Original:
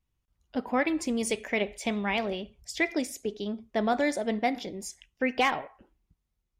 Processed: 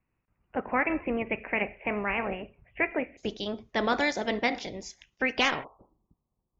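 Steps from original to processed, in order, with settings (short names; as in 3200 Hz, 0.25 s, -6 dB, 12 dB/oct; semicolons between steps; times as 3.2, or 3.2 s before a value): spectral limiter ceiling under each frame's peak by 14 dB; steep low-pass 2700 Hz 96 dB/oct, from 3.17 s 6900 Hz, from 5.63 s 1200 Hz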